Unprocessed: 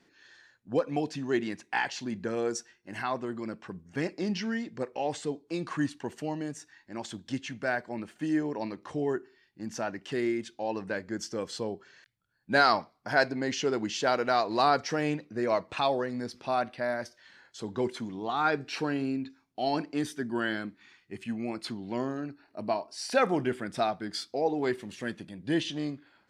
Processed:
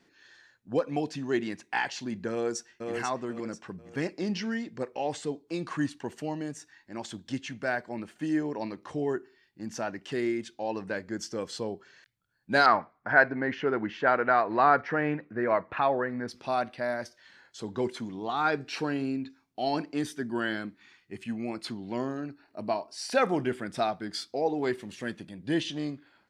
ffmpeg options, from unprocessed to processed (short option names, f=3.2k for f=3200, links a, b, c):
-filter_complex "[0:a]asplit=2[a][b];[b]afade=t=in:st=2.31:d=0.01,afade=t=out:st=2.91:d=0.01,aecho=0:1:490|980|1470|1960:0.595662|0.208482|0.0729686|0.025539[c];[a][c]amix=inputs=2:normalize=0,asettb=1/sr,asplit=3[d][e][f];[d]atrim=end=12.664[g];[e]atrim=start=12.66:end=16.28,asetpts=PTS-STARTPTS,afade=t=in:d=0.004:c=qsin,afade=t=out:st=3.616:d=0.004:c=qsin,lowpass=f=1.7k:t=q:w=2.1[h];[f]atrim=start=16.276[i];[g][h]acrossfade=d=0.004:c1=hsin:c2=qsin[j];[j][i]acrossfade=d=0.004:c1=qsin:c2=hsin"